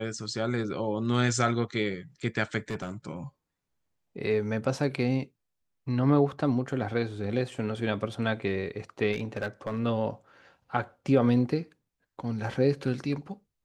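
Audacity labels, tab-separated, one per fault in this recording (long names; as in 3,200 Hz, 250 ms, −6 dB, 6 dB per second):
2.700000	2.900000	clipping −27.5 dBFS
9.120000	9.800000	clipping −25.5 dBFS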